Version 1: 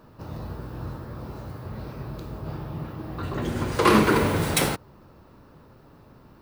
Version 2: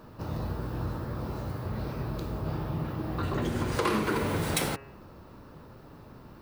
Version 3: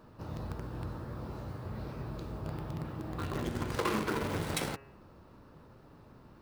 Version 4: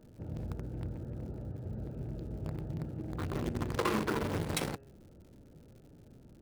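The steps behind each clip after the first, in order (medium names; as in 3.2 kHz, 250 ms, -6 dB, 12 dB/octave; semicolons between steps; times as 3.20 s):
de-hum 136.5 Hz, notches 21; compression 4:1, threshold -29 dBFS, peak gain reduction 13.5 dB; trim +2.5 dB
median filter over 3 samples; in parallel at -10 dB: bit crusher 4-bit; on the sum: trim -6.5 dB
local Wiener filter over 41 samples; crackle 160 per s -54 dBFS; trim +1 dB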